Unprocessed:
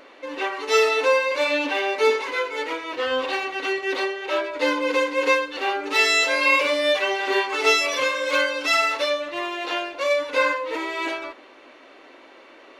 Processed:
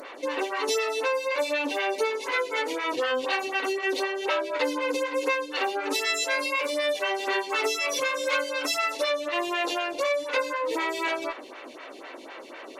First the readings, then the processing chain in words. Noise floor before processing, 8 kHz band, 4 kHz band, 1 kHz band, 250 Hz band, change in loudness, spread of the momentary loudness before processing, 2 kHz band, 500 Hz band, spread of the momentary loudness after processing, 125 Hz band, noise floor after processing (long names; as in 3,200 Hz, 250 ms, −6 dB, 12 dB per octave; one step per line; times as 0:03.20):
−48 dBFS, −1.0 dB, −4.5 dB, −4.0 dB, −3.0 dB, −5.0 dB, 10 LU, −6.0 dB, −4.5 dB, 7 LU, can't be measured, −43 dBFS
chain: downward compressor 6 to 1, threshold −30 dBFS, peak gain reduction 15.5 dB
parametric band 11,000 Hz +9.5 dB 1.9 octaves
phaser with staggered stages 4 Hz
level +7.5 dB